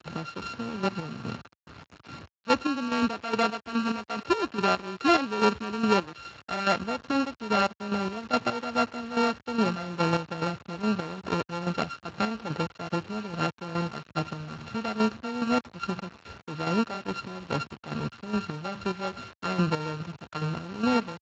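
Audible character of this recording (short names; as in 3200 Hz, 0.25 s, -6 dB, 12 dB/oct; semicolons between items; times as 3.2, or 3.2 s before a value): a buzz of ramps at a fixed pitch in blocks of 32 samples; chopped level 2.4 Hz, depth 65%, duty 40%; a quantiser's noise floor 8-bit, dither none; Speex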